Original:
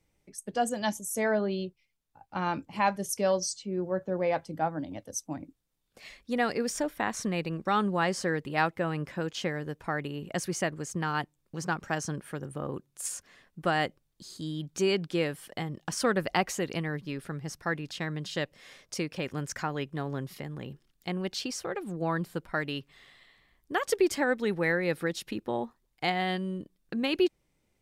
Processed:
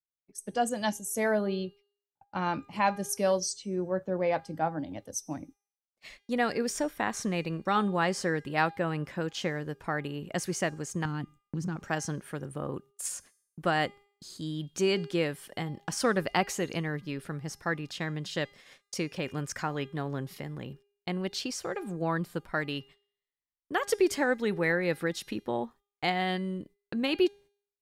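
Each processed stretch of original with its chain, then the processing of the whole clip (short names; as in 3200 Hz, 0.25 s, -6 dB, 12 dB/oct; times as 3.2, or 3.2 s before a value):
11.05–11.76 resonant low shelf 390 Hz +12 dB, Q 1.5 + compressor 4:1, threshold -31 dBFS
whole clip: gate -50 dBFS, range -38 dB; de-hum 404.6 Hz, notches 40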